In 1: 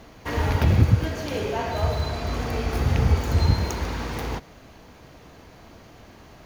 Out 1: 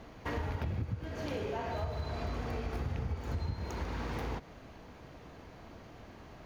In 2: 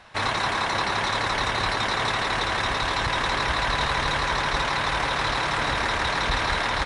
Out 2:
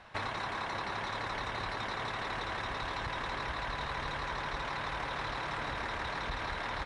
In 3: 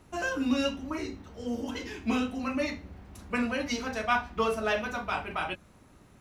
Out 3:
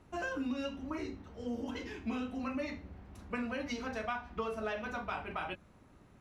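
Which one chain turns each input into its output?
compressor 8:1, threshold -29 dBFS; high shelf 4500 Hz -9.5 dB; gain -3.5 dB

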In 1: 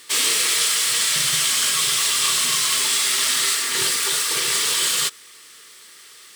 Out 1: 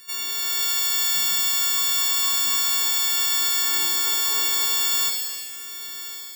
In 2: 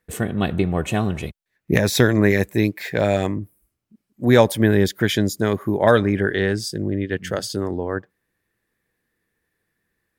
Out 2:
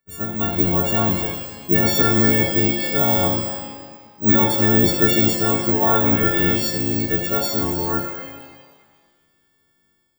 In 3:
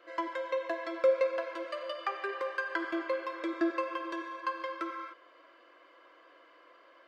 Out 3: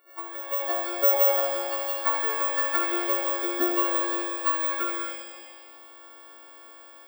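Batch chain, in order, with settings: frequency quantiser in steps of 4 st; notches 60/120 Hz; dynamic EQ 1000 Hz, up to +4 dB, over -37 dBFS, Q 1.3; limiter -6.5 dBFS; AGC gain up to 12 dB; harmonic-percussive split harmonic -8 dB; air absorption 64 m; careless resampling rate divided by 2×, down none, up zero stuff; shimmer reverb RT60 1.5 s, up +7 st, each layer -8 dB, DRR 1 dB; gain -3.5 dB

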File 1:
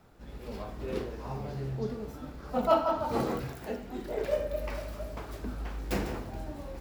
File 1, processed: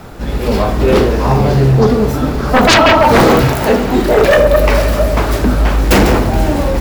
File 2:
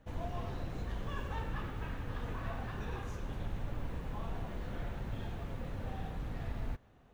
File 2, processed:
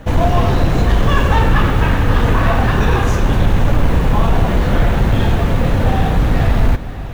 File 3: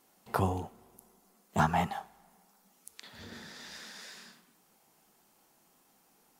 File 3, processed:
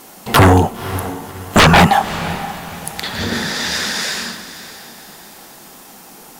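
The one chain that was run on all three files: sine folder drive 16 dB, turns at -11 dBFS; diffused feedback echo 0.544 s, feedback 41%, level -14 dB; short-mantissa float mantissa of 6-bit; gain +7 dB

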